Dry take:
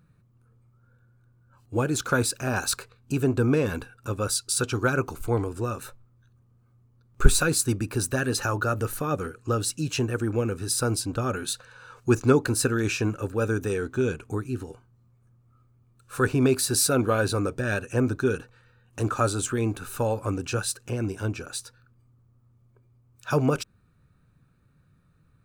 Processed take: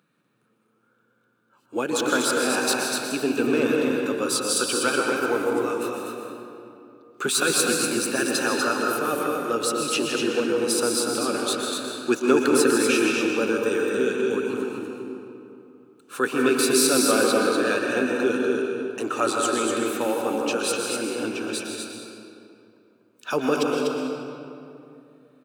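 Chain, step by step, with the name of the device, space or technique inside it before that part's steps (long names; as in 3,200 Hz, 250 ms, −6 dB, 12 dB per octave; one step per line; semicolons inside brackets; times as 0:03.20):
stadium PA (high-pass filter 230 Hz 24 dB per octave; parametric band 3,100 Hz +7 dB 0.81 octaves; loudspeakers that aren't time-aligned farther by 55 metres −11 dB, 84 metres −5 dB; convolution reverb RT60 2.7 s, pre-delay 110 ms, DRR 1 dB)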